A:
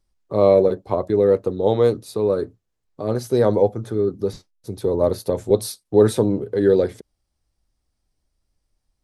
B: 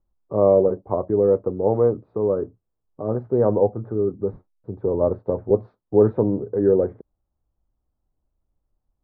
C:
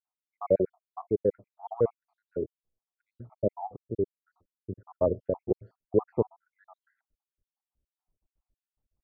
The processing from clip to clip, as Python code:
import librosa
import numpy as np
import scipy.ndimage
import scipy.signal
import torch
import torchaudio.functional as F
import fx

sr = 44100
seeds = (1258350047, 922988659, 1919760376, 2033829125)

y1 = scipy.signal.sosfilt(scipy.signal.butter(4, 1200.0, 'lowpass', fs=sr, output='sos'), x)
y1 = y1 * librosa.db_to_amplitude(-1.5)
y2 = fx.spec_dropout(y1, sr, seeds[0], share_pct=79)
y2 = fx.vibrato(y2, sr, rate_hz=7.4, depth_cents=69.0)
y2 = y2 * librosa.db_to_amplitude(-4.5)